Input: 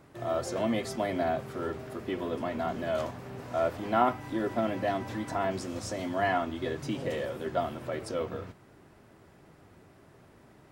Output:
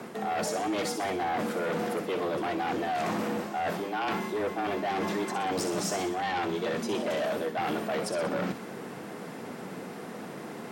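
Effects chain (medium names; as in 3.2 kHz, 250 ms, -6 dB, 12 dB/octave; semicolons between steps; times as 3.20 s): reverse; compression 20:1, threshold -39 dBFS, peak gain reduction 21 dB; reverse; sine folder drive 9 dB, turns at -29.5 dBFS; frequency shift +88 Hz; feedback echo behind a high-pass 62 ms, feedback 54%, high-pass 4.3 kHz, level -6 dB; trim +3.5 dB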